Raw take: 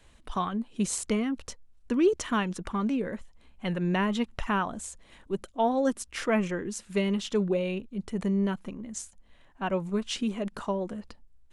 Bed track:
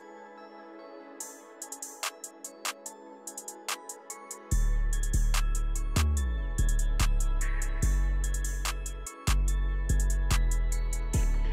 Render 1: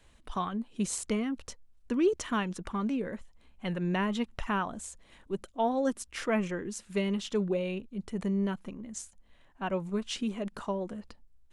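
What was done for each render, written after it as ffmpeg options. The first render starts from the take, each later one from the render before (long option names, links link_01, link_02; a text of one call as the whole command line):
ffmpeg -i in.wav -af "volume=-3dB" out.wav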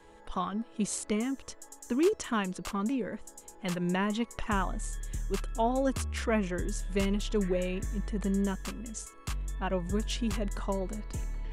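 ffmpeg -i in.wav -i bed.wav -filter_complex "[1:a]volume=-9dB[link_01];[0:a][link_01]amix=inputs=2:normalize=0" out.wav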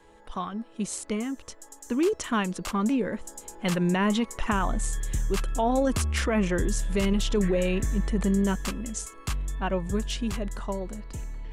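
ffmpeg -i in.wav -af "dynaudnorm=framelen=240:gausssize=21:maxgain=8dB,alimiter=limit=-16.5dB:level=0:latency=1:release=21" out.wav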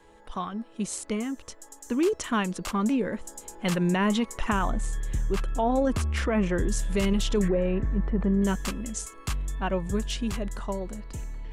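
ffmpeg -i in.wav -filter_complex "[0:a]asettb=1/sr,asplit=3[link_01][link_02][link_03];[link_01]atrim=end=4.704[link_04];[link_02]atrim=start=4.7:end=6.72,asetpts=PTS-STARTPTS,afade=type=in:duration=0.004:curve=qsin,afade=type=out:start_time=2.016:duration=0.004:curve=qsin,highshelf=frequency=3500:gain=-8.5[link_05];[link_03]atrim=start=6.716[link_06];[link_04][link_05]acrossfade=duration=0.004:curve1=hsin:curve2=qsin[link_07];[link_07][link_06]acrossfade=duration=0.004:curve1=qsin:curve2=hsin,asettb=1/sr,asplit=3[link_08][link_09][link_10];[link_08]atrim=end=7.484[link_11];[link_09]atrim=start=7.48:end=8.42,asetpts=PTS-STARTPTS,afade=type=in:duration=0.004:curve=qsin,afade=type=out:start_time=0.936:duration=0.004:curve=qsin,lowpass=1500[link_12];[link_10]atrim=start=8.416[link_13];[link_11][link_12]acrossfade=duration=0.004:curve1=hsin:curve2=qsin[link_14];[link_14][link_13]acrossfade=duration=0.004:curve1=qsin:curve2=hsin" out.wav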